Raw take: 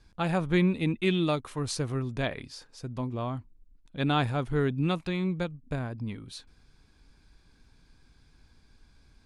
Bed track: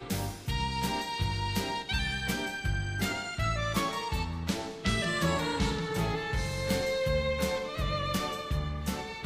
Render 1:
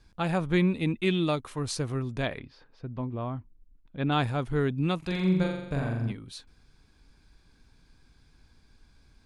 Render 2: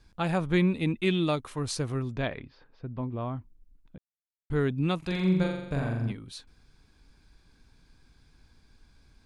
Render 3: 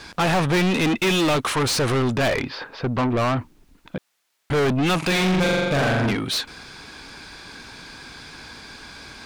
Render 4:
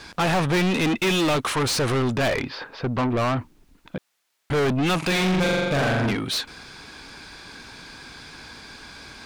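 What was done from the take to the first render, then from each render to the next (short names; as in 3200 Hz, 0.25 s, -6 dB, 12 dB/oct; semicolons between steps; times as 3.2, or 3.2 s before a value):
2.39–4.12 air absorption 340 m; 4.98–6.12 flutter echo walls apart 7.4 m, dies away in 0.86 s
2.13–3.02 air absorption 120 m; 3.98–4.5 mute
overdrive pedal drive 36 dB, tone 4900 Hz, clips at -13 dBFS
gain -1.5 dB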